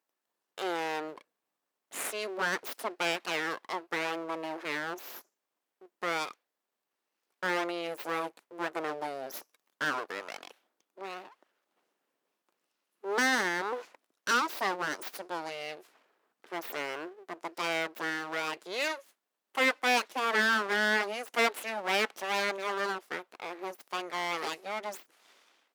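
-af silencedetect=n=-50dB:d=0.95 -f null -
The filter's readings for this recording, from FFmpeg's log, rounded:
silence_start: 6.33
silence_end: 7.43 | silence_duration: 1.09
silence_start: 11.43
silence_end: 13.04 | silence_duration: 1.61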